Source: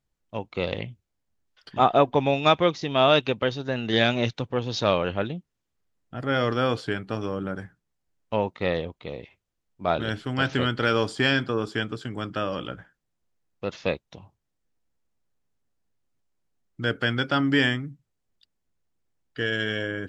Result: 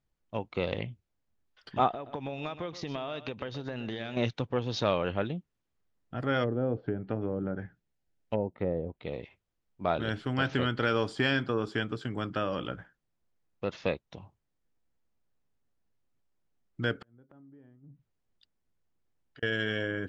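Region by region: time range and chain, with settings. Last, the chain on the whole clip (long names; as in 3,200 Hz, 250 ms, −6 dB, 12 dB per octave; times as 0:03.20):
0:01.91–0:04.17: downward compressor 20 to 1, threshold −30 dBFS + single-tap delay 124 ms −14 dB
0:06.43–0:09.13: treble cut that deepens with the level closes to 610 Hz, closed at −23.5 dBFS + parametric band 1,100 Hz −8.5 dB 0.39 octaves
0:17.02–0:19.43: treble cut that deepens with the level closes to 600 Hz, closed at −23 dBFS + gate with flip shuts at −22 dBFS, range −29 dB + downward compressor 5 to 1, threshold −49 dBFS
whole clip: low-pass filter 3,800 Hz 6 dB per octave; downward compressor 1.5 to 1, threshold −28 dBFS; level −1 dB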